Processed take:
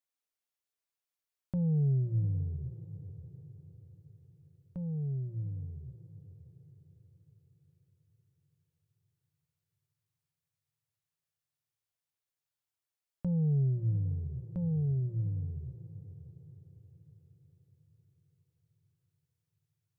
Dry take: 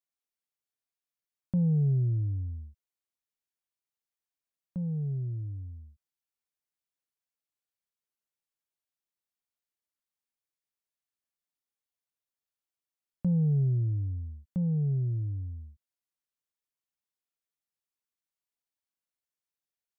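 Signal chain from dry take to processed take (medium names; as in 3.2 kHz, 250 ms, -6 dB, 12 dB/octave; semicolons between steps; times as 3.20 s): peaking EQ 210 Hz -9.5 dB 0.58 oct; hum notches 60/120 Hz; echo that smears into a reverb 654 ms, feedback 43%, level -14 dB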